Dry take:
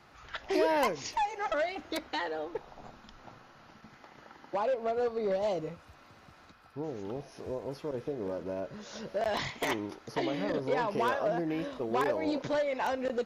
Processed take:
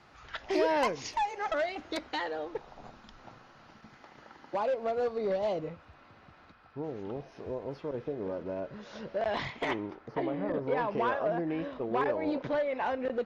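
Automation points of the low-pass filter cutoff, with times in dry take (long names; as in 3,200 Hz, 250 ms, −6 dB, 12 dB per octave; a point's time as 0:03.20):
0:05.12 7,500 Hz
0:05.69 3,500 Hz
0:09.59 3,500 Hz
0:10.40 1,300 Hz
0:10.80 2,800 Hz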